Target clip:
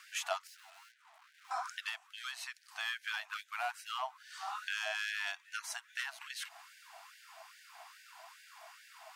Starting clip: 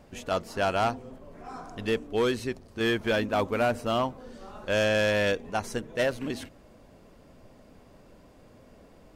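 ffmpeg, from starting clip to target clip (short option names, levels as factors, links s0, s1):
-filter_complex "[0:a]acompressor=threshold=0.01:ratio=8,asettb=1/sr,asplit=3[s0][s1][s2];[s0]atrim=end=0.474[s3];[s1]atrim=start=0.47:end=1.51,asetpts=PTS-STARTPTS,afade=t=in:d=0.004:c=qsin,afade=t=out:st=1.036:d=0.004:c=qsin,aeval=exprs='(tanh(1260*val(0)+0.75)-tanh(0.75))/1260':c=same[s4];[s2]atrim=start=1.506[s5];[s3][s4]acrossfade=d=0.004:c1=hsin:c2=qsin[s6];[s6][s5]acrossfade=d=0.004:c1=qsin:c2=hsin,afftfilt=real='re*gte(b*sr/1024,620*pow(1500/620,0.5+0.5*sin(2*PI*2.4*pts/sr)))':imag='im*gte(b*sr/1024,620*pow(1500/620,0.5+0.5*sin(2*PI*2.4*pts/sr)))':win_size=1024:overlap=0.75,volume=2.99"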